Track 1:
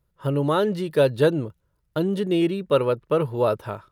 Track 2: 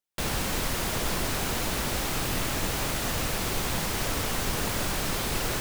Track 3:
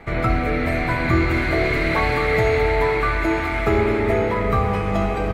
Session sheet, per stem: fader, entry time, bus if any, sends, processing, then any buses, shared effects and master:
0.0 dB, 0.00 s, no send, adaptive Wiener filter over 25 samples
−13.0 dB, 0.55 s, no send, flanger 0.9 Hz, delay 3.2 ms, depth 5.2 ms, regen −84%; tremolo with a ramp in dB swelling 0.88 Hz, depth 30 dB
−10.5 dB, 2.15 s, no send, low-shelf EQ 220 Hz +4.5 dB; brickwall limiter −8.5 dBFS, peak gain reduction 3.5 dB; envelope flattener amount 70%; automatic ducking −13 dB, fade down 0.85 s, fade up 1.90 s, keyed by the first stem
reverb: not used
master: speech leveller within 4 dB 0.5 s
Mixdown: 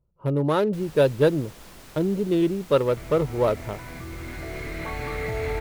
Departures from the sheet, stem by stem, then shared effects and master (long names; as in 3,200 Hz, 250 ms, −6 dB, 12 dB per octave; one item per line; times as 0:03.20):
stem 2: missing tremolo with a ramp in dB swelling 0.88 Hz, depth 30 dB
stem 3: entry 2.15 s → 2.90 s
master: missing speech leveller within 4 dB 0.5 s